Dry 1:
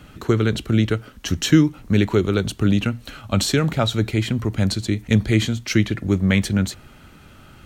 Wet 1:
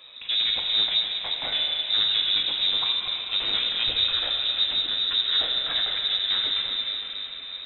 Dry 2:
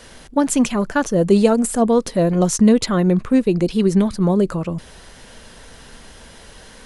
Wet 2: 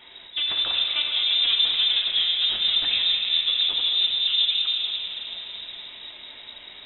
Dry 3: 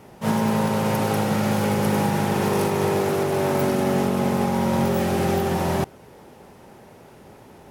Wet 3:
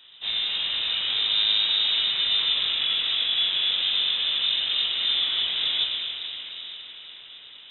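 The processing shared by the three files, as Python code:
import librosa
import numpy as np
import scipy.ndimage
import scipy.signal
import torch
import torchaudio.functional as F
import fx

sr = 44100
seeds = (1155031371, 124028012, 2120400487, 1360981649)

p1 = fx.tracing_dist(x, sr, depth_ms=0.26)
p2 = 10.0 ** (-17.5 / 20.0) * np.tanh(p1 / 10.0 ** (-17.5 / 20.0))
p3 = p2 + fx.echo_thinned(p2, sr, ms=232, feedback_pct=83, hz=380.0, wet_db=-13.5, dry=0)
p4 = fx.rev_plate(p3, sr, seeds[0], rt60_s=4.2, hf_ratio=0.55, predelay_ms=0, drr_db=-1.0)
p5 = fx.freq_invert(p4, sr, carrier_hz=3800)
p6 = fx.hum_notches(p5, sr, base_hz=50, count=2)
y = p6 * librosa.db_to_amplitude(-5.5)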